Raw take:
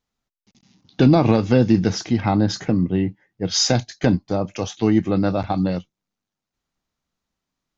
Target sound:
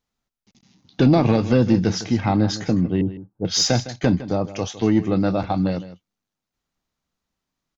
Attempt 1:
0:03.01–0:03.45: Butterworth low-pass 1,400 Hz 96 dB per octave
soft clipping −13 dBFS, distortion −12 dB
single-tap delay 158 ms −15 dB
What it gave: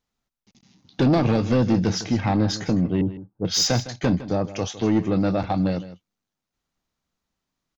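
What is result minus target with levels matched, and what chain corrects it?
soft clipping: distortion +10 dB
0:03.01–0:03.45: Butterworth low-pass 1,400 Hz 96 dB per octave
soft clipping −5.5 dBFS, distortion −21 dB
single-tap delay 158 ms −15 dB

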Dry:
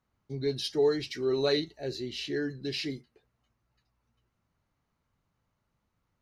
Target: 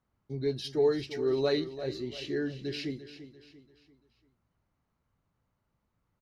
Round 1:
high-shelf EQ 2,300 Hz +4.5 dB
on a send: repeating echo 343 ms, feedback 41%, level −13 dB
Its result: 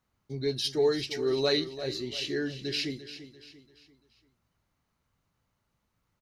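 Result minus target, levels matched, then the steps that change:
4,000 Hz band +6.5 dB
change: high-shelf EQ 2,300 Hz −7 dB

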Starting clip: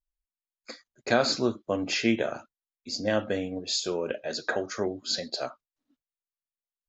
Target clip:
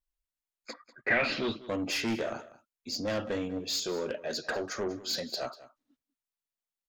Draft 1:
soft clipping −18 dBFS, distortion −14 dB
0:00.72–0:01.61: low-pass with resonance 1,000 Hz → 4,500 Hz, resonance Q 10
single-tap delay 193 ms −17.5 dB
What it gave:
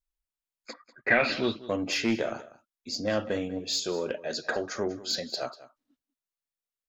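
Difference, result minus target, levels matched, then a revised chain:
soft clipping: distortion −7 dB
soft clipping −26.5 dBFS, distortion −7 dB
0:00.72–0:01.61: low-pass with resonance 1,000 Hz → 4,500 Hz, resonance Q 10
single-tap delay 193 ms −17.5 dB

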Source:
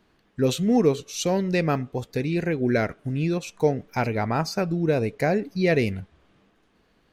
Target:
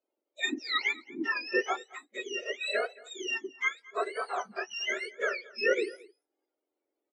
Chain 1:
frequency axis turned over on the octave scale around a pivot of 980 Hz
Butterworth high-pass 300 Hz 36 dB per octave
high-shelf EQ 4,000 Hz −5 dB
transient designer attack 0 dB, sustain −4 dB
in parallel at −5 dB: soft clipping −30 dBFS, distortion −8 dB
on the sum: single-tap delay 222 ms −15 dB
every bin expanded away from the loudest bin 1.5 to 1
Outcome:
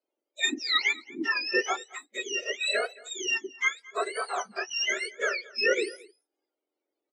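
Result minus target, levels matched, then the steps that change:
8,000 Hz band +6.5 dB; soft clipping: distortion −5 dB
change: high-shelf EQ 4,000 Hz −13.5 dB
change: soft clipping −41 dBFS, distortion −3 dB

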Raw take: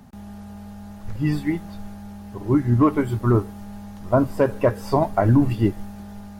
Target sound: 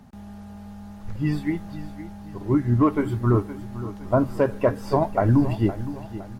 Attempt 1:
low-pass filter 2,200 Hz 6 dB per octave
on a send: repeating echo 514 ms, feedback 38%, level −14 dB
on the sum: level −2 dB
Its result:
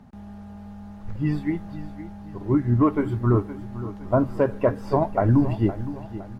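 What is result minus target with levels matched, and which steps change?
8,000 Hz band −8.0 dB
change: low-pass filter 7,800 Hz 6 dB per octave

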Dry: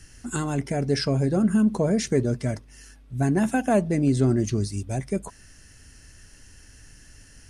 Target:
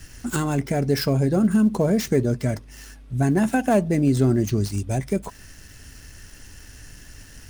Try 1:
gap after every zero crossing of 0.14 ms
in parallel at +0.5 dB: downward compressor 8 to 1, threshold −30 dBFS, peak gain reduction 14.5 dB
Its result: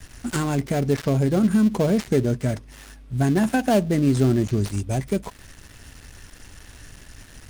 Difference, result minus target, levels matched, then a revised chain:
gap after every zero crossing: distortion +5 dB
gap after every zero crossing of 0.042 ms
in parallel at +0.5 dB: downward compressor 8 to 1, threshold −30 dBFS, peak gain reduction 14.5 dB

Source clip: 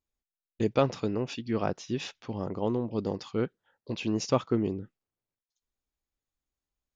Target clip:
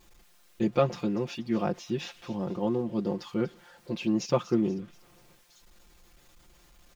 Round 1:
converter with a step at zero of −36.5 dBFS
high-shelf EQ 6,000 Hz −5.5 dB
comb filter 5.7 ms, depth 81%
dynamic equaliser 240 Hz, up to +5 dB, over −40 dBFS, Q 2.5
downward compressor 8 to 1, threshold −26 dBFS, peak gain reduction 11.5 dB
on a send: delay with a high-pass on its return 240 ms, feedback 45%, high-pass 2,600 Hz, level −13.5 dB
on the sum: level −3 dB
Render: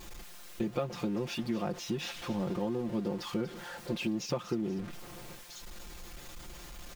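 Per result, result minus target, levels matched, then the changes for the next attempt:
downward compressor: peak gain reduction +11.5 dB; converter with a step at zero: distortion +11 dB
remove: downward compressor 8 to 1, threshold −26 dBFS, peak gain reduction 11.5 dB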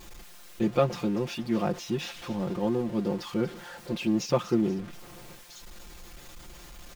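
converter with a step at zero: distortion +11 dB
change: converter with a step at zero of −48.5 dBFS

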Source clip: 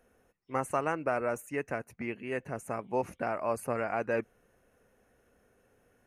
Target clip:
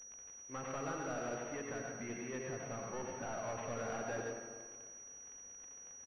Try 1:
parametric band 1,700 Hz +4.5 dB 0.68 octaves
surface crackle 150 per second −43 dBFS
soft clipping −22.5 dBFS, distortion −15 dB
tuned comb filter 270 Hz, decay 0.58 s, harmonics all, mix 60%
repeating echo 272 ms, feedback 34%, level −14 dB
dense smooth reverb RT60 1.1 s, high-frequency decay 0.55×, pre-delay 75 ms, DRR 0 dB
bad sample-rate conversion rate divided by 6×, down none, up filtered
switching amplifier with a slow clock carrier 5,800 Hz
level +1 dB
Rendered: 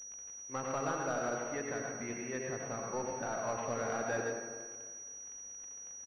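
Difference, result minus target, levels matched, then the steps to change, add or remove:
soft clipping: distortion −9 dB
change: soft clipping −33.5 dBFS, distortion −6 dB

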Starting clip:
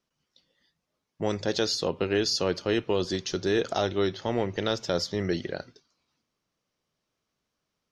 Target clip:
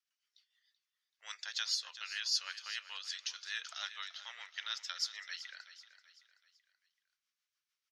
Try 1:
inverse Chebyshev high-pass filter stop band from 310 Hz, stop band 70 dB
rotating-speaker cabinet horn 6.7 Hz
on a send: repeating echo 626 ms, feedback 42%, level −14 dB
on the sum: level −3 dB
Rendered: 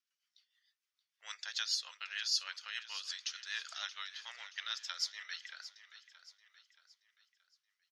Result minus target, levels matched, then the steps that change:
echo 244 ms late
change: repeating echo 382 ms, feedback 42%, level −14 dB

